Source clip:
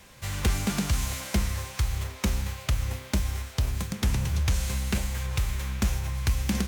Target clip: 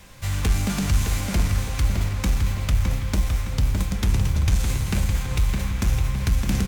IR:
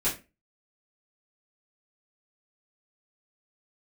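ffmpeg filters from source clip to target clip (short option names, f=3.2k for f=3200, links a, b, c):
-filter_complex "[0:a]asoftclip=type=tanh:threshold=-20.5dB,lowshelf=f=92:g=7.5,asplit=2[a][b];[b]adelay=612,lowpass=f=3.2k:p=1,volume=-4dB,asplit=2[c][d];[d]adelay=612,lowpass=f=3.2k:p=1,volume=0.5,asplit=2[e][f];[f]adelay=612,lowpass=f=3.2k:p=1,volume=0.5,asplit=2[g][h];[h]adelay=612,lowpass=f=3.2k:p=1,volume=0.5,asplit=2[i][j];[j]adelay=612,lowpass=f=3.2k:p=1,volume=0.5,asplit=2[k][l];[l]adelay=612,lowpass=f=3.2k:p=1,volume=0.5[m];[a][c][e][g][i][k][m]amix=inputs=7:normalize=0,asplit=2[n][o];[1:a]atrim=start_sample=2205[p];[o][p]afir=irnorm=-1:irlink=0,volume=-18.5dB[q];[n][q]amix=inputs=2:normalize=0,volume=2dB"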